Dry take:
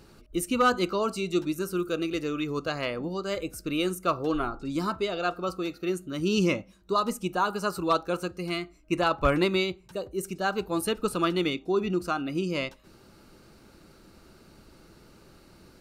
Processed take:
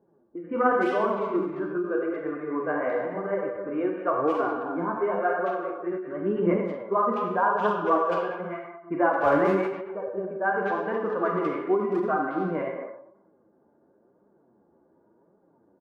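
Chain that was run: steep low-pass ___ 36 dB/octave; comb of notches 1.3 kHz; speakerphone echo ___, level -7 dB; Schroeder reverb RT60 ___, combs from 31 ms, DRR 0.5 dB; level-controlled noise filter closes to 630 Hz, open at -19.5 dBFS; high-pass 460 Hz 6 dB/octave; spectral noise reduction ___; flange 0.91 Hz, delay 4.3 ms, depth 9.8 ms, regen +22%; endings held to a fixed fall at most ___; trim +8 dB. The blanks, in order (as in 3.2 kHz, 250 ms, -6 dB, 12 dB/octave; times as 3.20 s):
1.7 kHz, 210 ms, 1.1 s, 8 dB, 100 dB/s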